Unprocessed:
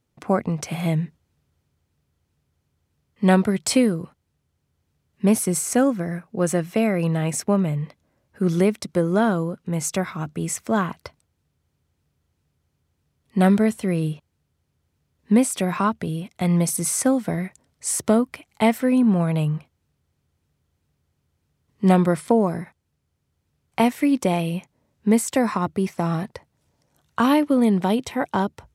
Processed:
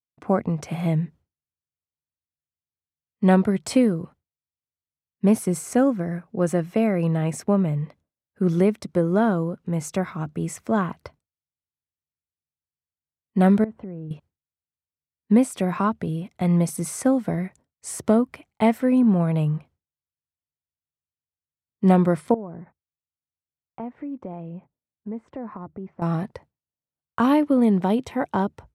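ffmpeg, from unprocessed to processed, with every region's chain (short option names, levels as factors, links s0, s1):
-filter_complex "[0:a]asettb=1/sr,asplit=3[s0][s1][s2];[s0]atrim=end=13.644[s3];[s1]atrim=start=13.64:end=14.11,asetpts=PTS-STARTPTS,afade=t=in:d=0.004:c=qsin,afade=t=out:st=0.466:d=0.004:c=qsin,lowpass=1200,acompressor=threshold=0.0224:ratio=4:attack=3.2:release=140:knee=1:detection=peak[s4];[s2]atrim=start=14.106[s5];[s3][s4]acrossfade=d=0.004:c1=hsin:c2=qsin[s6];[s6][s5]acrossfade=d=0.004:c1=qsin:c2=hsin,asettb=1/sr,asplit=3[s7][s8][s9];[s7]atrim=end=22.344[s10];[s8]atrim=start=22.34:end=26.02,asetpts=PTS-STARTPTS,afade=t=in:d=0.004:c=qsin,afade=t=out:st=3.676:d=0.004:c=qsin,lowpass=1300,acompressor=threshold=0.00891:ratio=2:attack=3.2:release=140:knee=1:detection=peak[s11];[s9]atrim=start=26.016[s12];[s10][s11]acrossfade=d=0.004:c1=hsin:c2=qsin[s13];[s13][s12]acrossfade=d=0.004:c1=qsin:c2=hsin,agate=range=0.0224:threshold=0.00708:ratio=3:detection=peak,highshelf=f=2100:g=-9.5"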